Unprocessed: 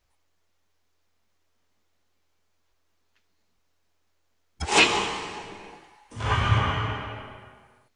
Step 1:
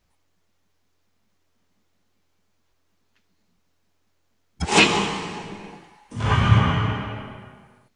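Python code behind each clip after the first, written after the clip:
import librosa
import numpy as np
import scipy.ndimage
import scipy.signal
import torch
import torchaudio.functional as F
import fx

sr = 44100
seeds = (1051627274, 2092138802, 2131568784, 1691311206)

y = fx.peak_eq(x, sr, hz=180.0, db=11.5, octaves=1.1)
y = y * librosa.db_to_amplitude(2.0)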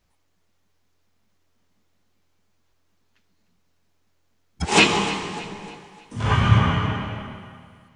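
y = fx.echo_feedback(x, sr, ms=302, feedback_pct=42, wet_db=-16.0)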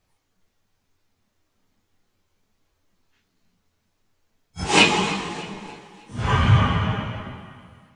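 y = fx.phase_scramble(x, sr, seeds[0], window_ms=100)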